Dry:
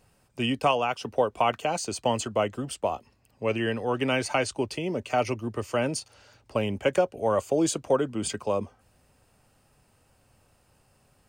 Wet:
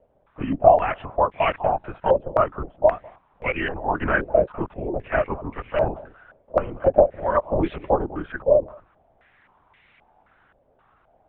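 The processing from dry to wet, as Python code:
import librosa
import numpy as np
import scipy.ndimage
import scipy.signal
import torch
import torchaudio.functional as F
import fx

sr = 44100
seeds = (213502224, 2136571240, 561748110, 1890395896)

y = x + 0.97 * np.pad(x, (int(3.2 * sr / 1000.0), 0))[:len(x)]
y = fx.dmg_noise_colour(y, sr, seeds[0], colour='blue', level_db=-45.0)
y = scipy.signal.sosfilt(scipy.signal.cheby1(6, 3, 180.0, 'highpass', fs=sr, output='sos'), y)
y = y + 10.0 ** (-20.0 / 20.0) * np.pad(y, (int(201 * sr / 1000.0), 0))[:len(y)]
y = fx.lpc_vocoder(y, sr, seeds[1], excitation='whisper', order=10)
y = fx.filter_held_lowpass(y, sr, hz=3.8, low_hz=570.0, high_hz=2200.0)
y = y * librosa.db_to_amplitude(-1.5)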